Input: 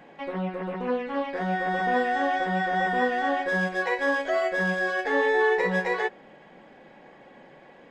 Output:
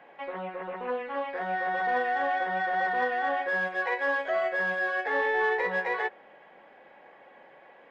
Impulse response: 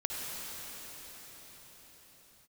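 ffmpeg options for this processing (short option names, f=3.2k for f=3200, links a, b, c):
-filter_complex "[0:a]acrossover=split=440 3300:gain=0.178 1 0.158[a][b][c];[a][b][c]amix=inputs=3:normalize=0,asplit=2[d][e];[e]asoftclip=type=tanh:threshold=-23dB,volume=-5.5dB[f];[d][f]amix=inputs=2:normalize=0,volume=-4dB"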